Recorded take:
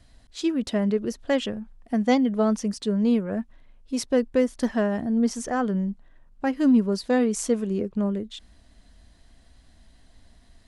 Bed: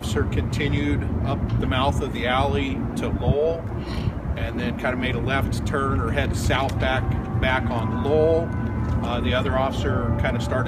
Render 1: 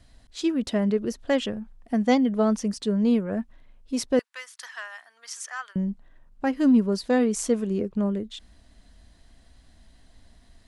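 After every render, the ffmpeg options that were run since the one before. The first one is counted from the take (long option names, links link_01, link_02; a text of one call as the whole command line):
ffmpeg -i in.wav -filter_complex "[0:a]asettb=1/sr,asplit=3[link_01][link_02][link_03];[link_01]atrim=end=4.194[link_04];[link_02]atrim=start=4.19:end=5.76,asetpts=PTS-STARTPTS,afade=type=in:duration=0.004:curve=qsin,afade=type=out:start_time=1.566:duration=0.004:curve=qsin,highpass=frequency=1200:width=0.5412,highpass=frequency=1200:width=1.3066[link_05];[link_03]atrim=start=5.756[link_06];[link_04][link_05]acrossfade=duration=0.004:curve1=hsin:curve2=qsin[link_07];[link_07][link_06]acrossfade=duration=0.004:curve1=qsin:curve2=hsin" out.wav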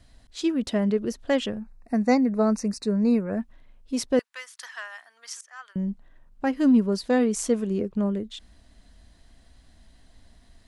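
ffmpeg -i in.wav -filter_complex "[0:a]asettb=1/sr,asplit=3[link_01][link_02][link_03];[link_01]atrim=end=1.584[link_04];[link_02]atrim=start=1.58:end=3.4,asetpts=PTS-STARTPTS,afade=type=in:duration=0.004:curve=qsin,afade=type=out:start_time=1.816:duration=0.004:curve=qsin,asuperstop=centerf=3200:order=12:qfactor=3.3[link_05];[link_03]atrim=start=3.396[link_06];[link_04][link_05]acrossfade=duration=0.004:curve1=hsin:curve2=qsin[link_07];[link_07][link_06]acrossfade=duration=0.004:curve1=qsin:curve2=hsin,asplit=2[link_08][link_09];[link_08]atrim=end=5.41,asetpts=PTS-STARTPTS,afade=type=out:start_time=5.406:duration=0.004:curve=hsin:silence=0.0668344[link_10];[link_09]atrim=start=5.41,asetpts=PTS-STARTPTS,afade=type=in:duration=0.48:silence=0.0668344[link_11];[link_10][link_11]concat=n=2:v=0:a=1" out.wav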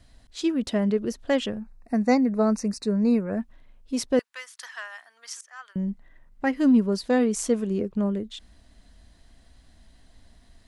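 ffmpeg -i in.wav -filter_complex "[0:a]asettb=1/sr,asplit=3[link_01][link_02][link_03];[link_01]atrim=end=5.884[link_04];[link_02]atrim=start=5.88:end=6.57,asetpts=PTS-STARTPTS,afade=type=in:duration=0.004:curve=qsin,afade=type=out:start_time=0.686:duration=0.004:curve=qsin,equalizer=frequency=2000:width=6.9:gain=10[link_05];[link_03]atrim=start=6.566[link_06];[link_04][link_05]acrossfade=duration=0.004:curve1=hsin:curve2=qsin[link_07];[link_07][link_06]acrossfade=duration=0.004:curve1=qsin:curve2=hsin" out.wav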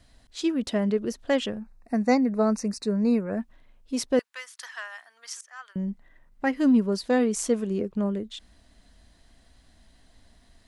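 ffmpeg -i in.wav -af "lowshelf=frequency=180:gain=-4" out.wav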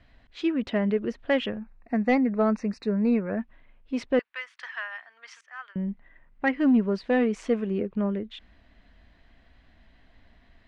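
ffmpeg -i in.wav -af "lowpass=frequency=2400:width_type=q:width=1.6,asoftclip=type=tanh:threshold=-11dB" out.wav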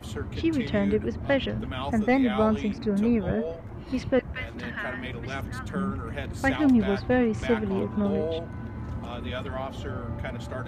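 ffmpeg -i in.wav -i bed.wav -filter_complex "[1:a]volume=-11dB[link_01];[0:a][link_01]amix=inputs=2:normalize=0" out.wav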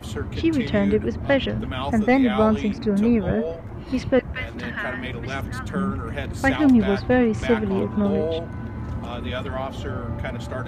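ffmpeg -i in.wav -af "volume=4.5dB" out.wav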